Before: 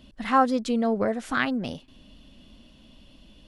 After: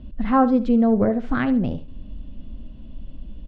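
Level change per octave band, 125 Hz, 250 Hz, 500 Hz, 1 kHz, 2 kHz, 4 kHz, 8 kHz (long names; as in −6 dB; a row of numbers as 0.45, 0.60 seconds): +10.5 dB, +8.5 dB, +4.0 dB, +0.5 dB, −3.0 dB, can't be measured, below −20 dB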